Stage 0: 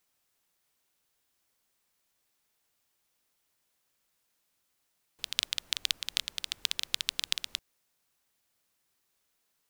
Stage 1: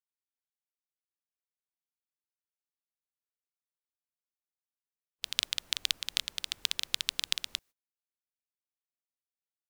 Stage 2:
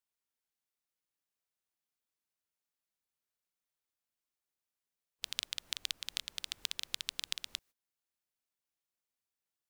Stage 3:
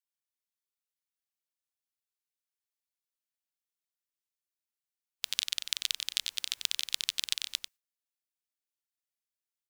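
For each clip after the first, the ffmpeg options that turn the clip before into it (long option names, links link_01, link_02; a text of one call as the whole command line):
ffmpeg -i in.wav -af "agate=range=-30dB:threshold=-58dB:ratio=16:detection=peak" out.wav
ffmpeg -i in.wav -af "acompressor=threshold=-43dB:ratio=2,volume=3dB" out.wav
ffmpeg -i in.wav -filter_complex "[0:a]tiltshelf=frequency=1100:gain=-7.5,agate=range=-11dB:threshold=-52dB:ratio=16:detection=peak,asplit=2[link_01][link_02];[link_02]adelay=93.29,volume=-7dB,highshelf=frequency=4000:gain=-2.1[link_03];[link_01][link_03]amix=inputs=2:normalize=0" out.wav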